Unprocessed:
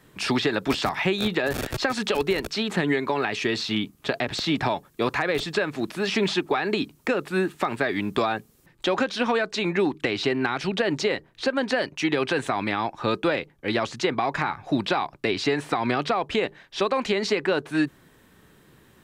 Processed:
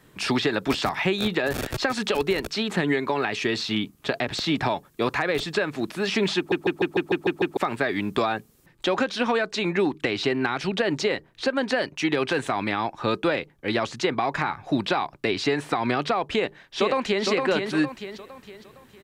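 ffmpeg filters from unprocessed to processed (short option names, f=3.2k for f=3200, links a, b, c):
-filter_complex "[0:a]asettb=1/sr,asplit=3[a][b][c];[a]atrim=end=12.074[d];[b]atrim=start=12.07:end=12.68,asetpts=PTS-STARTPTS,afade=t=in:d=0.004:c=qsin,afade=t=out:st=0.606:d=0.004:c=qsin,asoftclip=type=hard:threshold=-13.5dB[e];[c]atrim=start=12.676[f];[d][e]acrossfade=d=0.004:c1=hsin:c2=qsin[g];[g][f]acrossfade=d=0.004:c1=qsin:c2=hsin,asplit=2[h][i];[i]afade=t=in:st=16.34:d=0.01,afade=t=out:st=17.25:d=0.01,aecho=0:1:460|920|1380|1840|2300:0.630957|0.252383|0.100953|0.0403813|0.0161525[j];[h][j]amix=inputs=2:normalize=0,asplit=9[k][l][m][n][o][p][q][r][s];[k]atrim=end=6.522[t];[l]atrim=start=6.368:end=6.522[u];[m]atrim=start=6.368:end=6.522[v];[n]atrim=start=6.368:end=6.522[w];[o]atrim=start=6.368:end=6.522[x];[p]atrim=start=6.368:end=6.522[y];[q]atrim=start=6.368:end=6.522[z];[r]atrim=start=6.368:end=6.522[aa];[s]atrim=start=7.568[ab];[t][u]acrossfade=d=0.004:c1=hsin:c2=hsin[ac];[ac][v]acrossfade=d=0.004:c1=hsin:c2=hsin[ad];[ad][w]acrossfade=d=0.004:c1=hsin:c2=hsin[ae];[ae][x]acrossfade=d=0.004:c1=hsin:c2=hsin[af];[af][y]acrossfade=d=0.004:c1=hsin:c2=hsin[ag];[ag][z]acrossfade=d=0.004:c1=hsin:c2=hsin[ah];[ah][aa]acrossfade=d=0.004:c1=hsin:c2=hsin[ai];[ai][ab]acrossfade=d=0.004:c1=hsin:c2=hsin"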